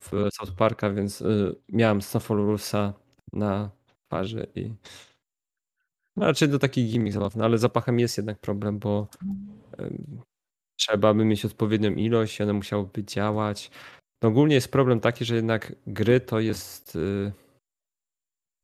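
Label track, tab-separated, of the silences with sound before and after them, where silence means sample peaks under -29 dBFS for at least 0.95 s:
4.710000	6.170000	silence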